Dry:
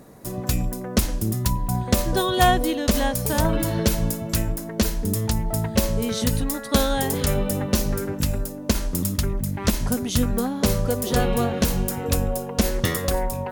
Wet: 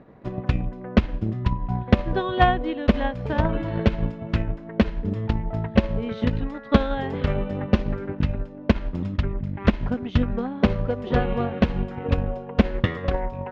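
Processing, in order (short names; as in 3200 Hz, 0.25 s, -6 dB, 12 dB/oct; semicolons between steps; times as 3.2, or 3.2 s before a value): LPF 2900 Hz 24 dB/oct; transient shaper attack +7 dB, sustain -4 dB; gain -3 dB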